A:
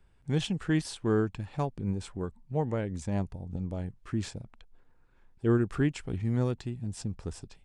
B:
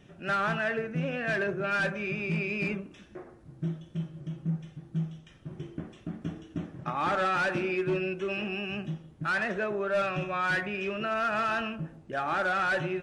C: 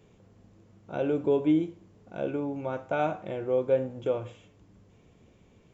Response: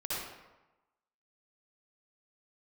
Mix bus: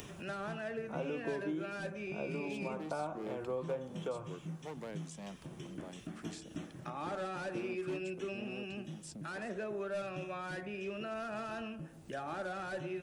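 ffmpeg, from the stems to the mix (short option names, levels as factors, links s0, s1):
-filter_complex "[0:a]asoftclip=type=hard:threshold=0.0376,highpass=f=180:w=0.5412,highpass=f=180:w=1.3066,adelay=2100,volume=0.316[s0];[1:a]highshelf=f=7600:g=11.5,volume=0.501[s1];[2:a]equalizer=f=1100:t=o:w=0.83:g=13.5,volume=0.398[s2];[s0][s1][s2]amix=inputs=3:normalize=0,acompressor=mode=upward:threshold=0.00891:ratio=2.5,highshelf=f=2600:g=9.5,acrossover=split=220|740[s3][s4][s5];[s3]acompressor=threshold=0.00355:ratio=4[s6];[s4]acompressor=threshold=0.0141:ratio=4[s7];[s5]acompressor=threshold=0.00355:ratio=4[s8];[s6][s7][s8]amix=inputs=3:normalize=0"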